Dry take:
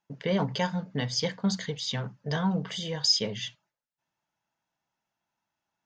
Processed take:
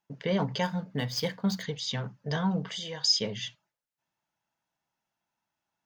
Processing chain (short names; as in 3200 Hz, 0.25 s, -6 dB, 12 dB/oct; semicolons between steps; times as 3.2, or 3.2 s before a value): 0.63–1.63 median filter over 5 samples; 2.69–3.1 low shelf 400 Hz -9 dB; gain -1 dB